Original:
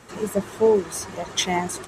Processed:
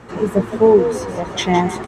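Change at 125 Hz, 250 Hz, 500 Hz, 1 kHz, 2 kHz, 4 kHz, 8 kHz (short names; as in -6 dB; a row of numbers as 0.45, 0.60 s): +10.0, +9.5, +7.0, +7.5, +4.0, +0.5, -4.5 dB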